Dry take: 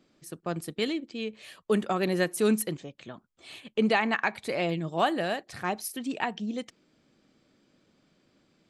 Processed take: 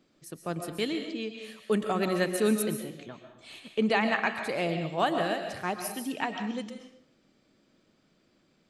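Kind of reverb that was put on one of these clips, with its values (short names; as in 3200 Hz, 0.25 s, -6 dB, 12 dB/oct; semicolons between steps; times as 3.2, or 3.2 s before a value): digital reverb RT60 0.69 s, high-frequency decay 0.9×, pre-delay 90 ms, DRR 5.5 dB; gain -1.5 dB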